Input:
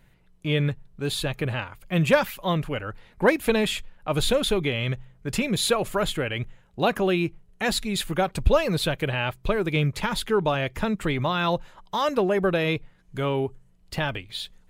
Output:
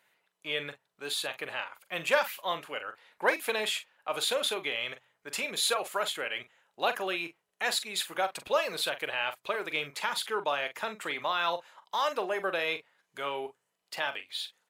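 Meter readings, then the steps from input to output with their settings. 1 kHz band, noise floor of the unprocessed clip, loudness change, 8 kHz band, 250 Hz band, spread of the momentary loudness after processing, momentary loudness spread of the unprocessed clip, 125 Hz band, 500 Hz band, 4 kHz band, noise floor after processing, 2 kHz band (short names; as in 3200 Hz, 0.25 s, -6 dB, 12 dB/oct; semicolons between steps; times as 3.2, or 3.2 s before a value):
-4.0 dB, -58 dBFS, -6.0 dB, -2.5 dB, -19.0 dB, 10 LU, 10 LU, -28.5 dB, -8.5 dB, -2.5 dB, -81 dBFS, -3.0 dB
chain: HPF 670 Hz 12 dB/oct; doubler 42 ms -11 dB; gain -3 dB; Opus 128 kbps 48000 Hz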